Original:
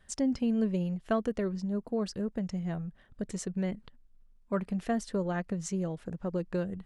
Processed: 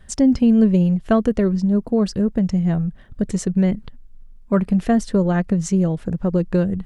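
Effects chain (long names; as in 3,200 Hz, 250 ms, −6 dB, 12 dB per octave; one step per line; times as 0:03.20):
low-shelf EQ 280 Hz +9 dB
level +9 dB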